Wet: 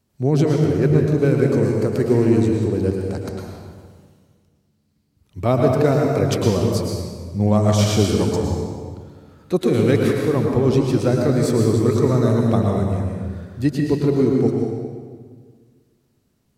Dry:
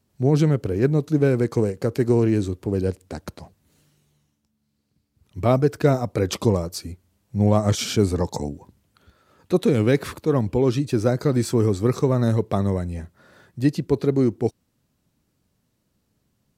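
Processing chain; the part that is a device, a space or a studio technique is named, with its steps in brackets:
stairwell (convolution reverb RT60 1.6 s, pre-delay 103 ms, DRR 0 dB)

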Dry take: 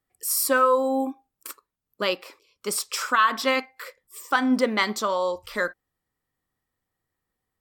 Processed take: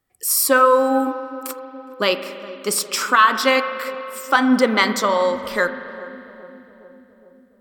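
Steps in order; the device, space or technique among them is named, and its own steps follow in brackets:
dub delay into a spring reverb (feedback echo with a low-pass in the loop 414 ms, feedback 69%, low-pass 860 Hz, level −16 dB; spring reverb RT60 2.9 s, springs 40 ms, chirp 50 ms, DRR 10.5 dB)
level +6 dB

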